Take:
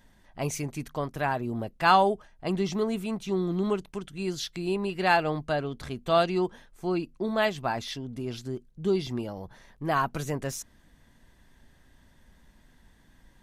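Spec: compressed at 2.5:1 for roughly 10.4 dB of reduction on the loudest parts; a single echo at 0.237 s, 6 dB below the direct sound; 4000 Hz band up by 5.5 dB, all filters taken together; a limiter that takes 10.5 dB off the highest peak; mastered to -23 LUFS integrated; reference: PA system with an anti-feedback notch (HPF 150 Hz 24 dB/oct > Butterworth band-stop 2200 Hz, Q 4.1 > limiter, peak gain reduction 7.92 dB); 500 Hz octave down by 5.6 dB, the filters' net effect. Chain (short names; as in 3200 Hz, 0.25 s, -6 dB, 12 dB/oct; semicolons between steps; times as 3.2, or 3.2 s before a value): bell 500 Hz -8.5 dB; bell 4000 Hz +7 dB; compressor 2.5:1, threshold -32 dBFS; limiter -26.5 dBFS; HPF 150 Hz 24 dB/oct; Butterworth band-stop 2200 Hz, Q 4.1; echo 0.237 s -6 dB; gain +17 dB; limiter -13.5 dBFS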